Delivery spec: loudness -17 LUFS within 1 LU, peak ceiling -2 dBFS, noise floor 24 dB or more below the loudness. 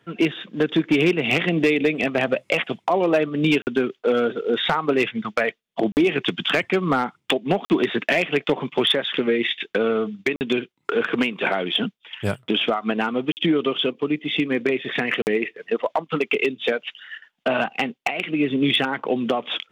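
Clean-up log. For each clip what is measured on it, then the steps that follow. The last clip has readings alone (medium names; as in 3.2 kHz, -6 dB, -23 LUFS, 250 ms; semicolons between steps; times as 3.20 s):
clipped samples 0.3%; clipping level -11.0 dBFS; dropouts 6; longest dropout 49 ms; loudness -22.5 LUFS; peak level -11.0 dBFS; loudness target -17.0 LUFS
-> clip repair -11 dBFS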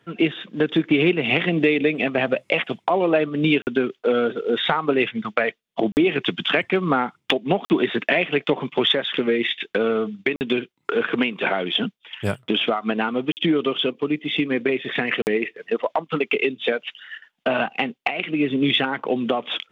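clipped samples 0.0%; dropouts 6; longest dropout 49 ms
-> interpolate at 3.62/5.92/7.65/10.36/13.32/15.22 s, 49 ms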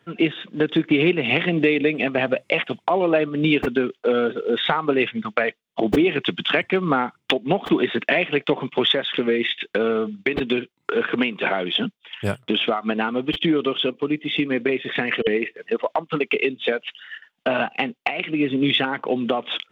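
dropouts 0; loudness -22.0 LUFS; peak level -2.0 dBFS; loudness target -17.0 LUFS
-> trim +5 dB; peak limiter -2 dBFS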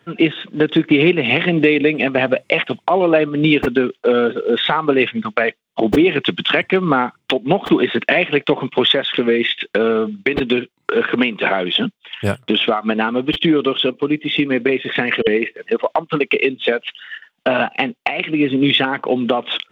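loudness -17.0 LUFS; peak level -2.0 dBFS; noise floor -65 dBFS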